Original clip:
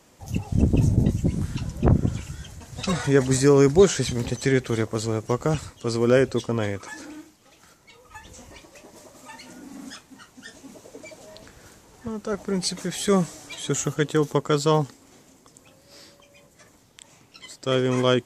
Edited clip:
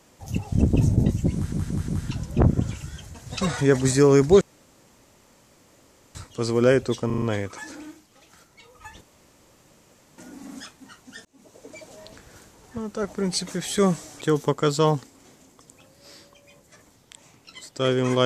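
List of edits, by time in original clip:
0:01.34: stutter 0.18 s, 4 plays
0:03.87–0:05.61: fill with room tone
0:06.52: stutter 0.04 s, 5 plays
0:08.31–0:09.48: fill with room tone
0:10.55–0:11.23: fade in equal-power
0:13.51–0:14.08: remove

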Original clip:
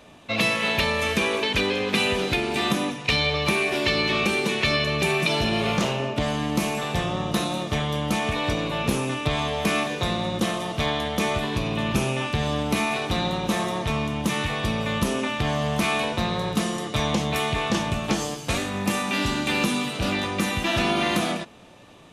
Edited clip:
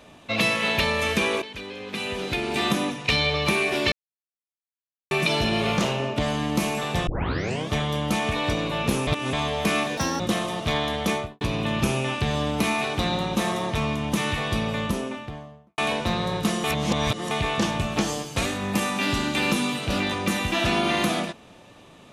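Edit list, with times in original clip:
0:01.42–0:02.59: fade in quadratic, from −14.5 dB
0:03.92–0:05.11: silence
0:07.07: tape start 0.64 s
0:09.07–0:09.33: reverse
0:09.97–0:10.32: play speed 153%
0:11.20–0:11.53: fade out and dull
0:14.66–0:15.90: fade out and dull
0:16.76–0:17.43: reverse

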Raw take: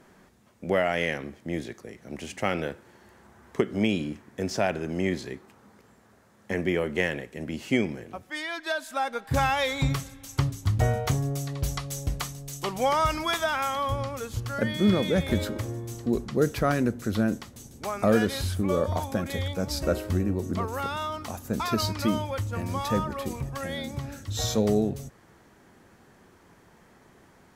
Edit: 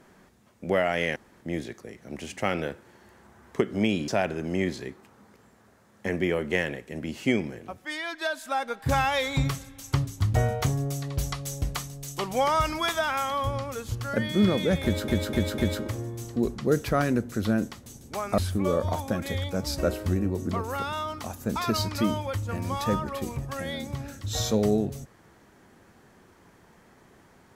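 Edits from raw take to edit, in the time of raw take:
0:01.16–0:01.41: fill with room tone
0:04.08–0:04.53: remove
0:15.28–0:15.53: repeat, 4 plays
0:18.08–0:18.42: remove

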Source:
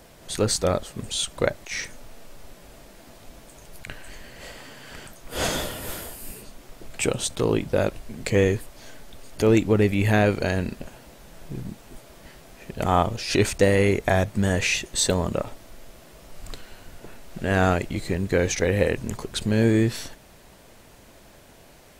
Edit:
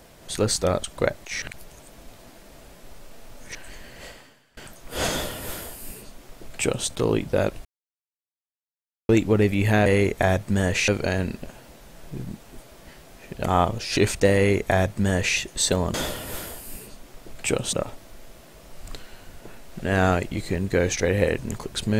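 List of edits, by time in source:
0:00.84–0:01.24: remove
0:01.82–0:03.95: reverse
0:04.45–0:04.97: fade out quadratic, to −23.5 dB
0:05.49–0:07.28: duplicate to 0:15.32
0:08.05–0:09.49: silence
0:13.73–0:14.75: duplicate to 0:10.26

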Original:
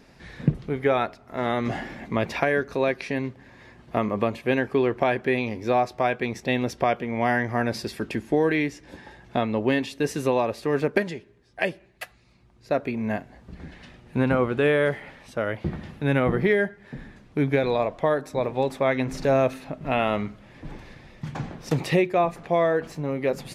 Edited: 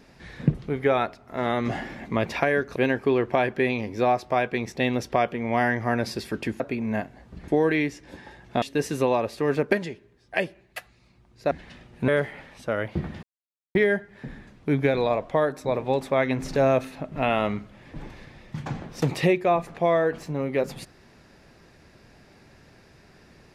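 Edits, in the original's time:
0:02.76–0:04.44: remove
0:09.42–0:09.87: remove
0:12.76–0:13.64: move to 0:08.28
0:14.21–0:14.77: remove
0:15.92–0:16.44: silence

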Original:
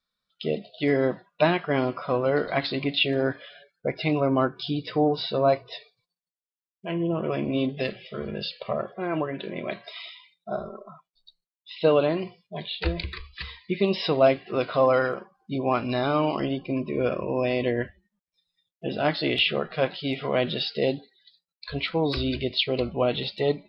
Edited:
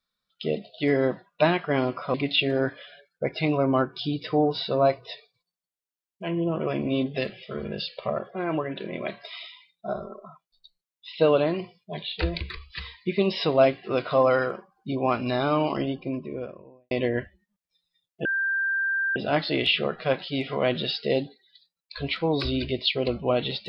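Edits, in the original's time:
0:02.14–0:02.77: remove
0:16.33–0:17.54: fade out and dull
0:18.88: insert tone 1,580 Hz −22.5 dBFS 0.91 s

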